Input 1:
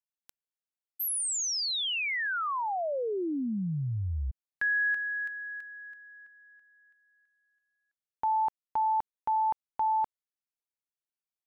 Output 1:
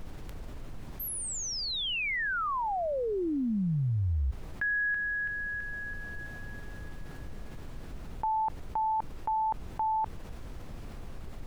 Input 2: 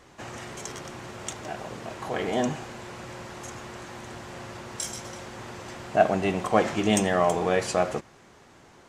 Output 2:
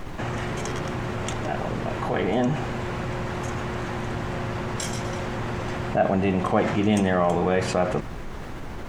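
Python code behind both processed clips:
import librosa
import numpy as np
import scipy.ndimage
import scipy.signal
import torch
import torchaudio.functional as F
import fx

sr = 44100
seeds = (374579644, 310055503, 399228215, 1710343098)

y = fx.bass_treble(x, sr, bass_db=6, treble_db=-10)
y = fx.dmg_noise_colour(y, sr, seeds[0], colour='brown', level_db=-48.0)
y = fx.env_flatten(y, sr, amount_pct=50)
y = y * librosa.db_to_amplitude(-3.0)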